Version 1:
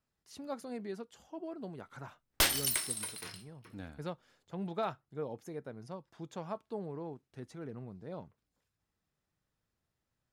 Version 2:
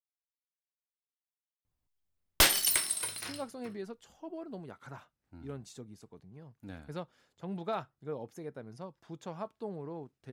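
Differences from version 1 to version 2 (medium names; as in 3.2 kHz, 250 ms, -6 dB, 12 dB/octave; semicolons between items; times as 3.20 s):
speech: entry +2.90 s; background +4.5 dB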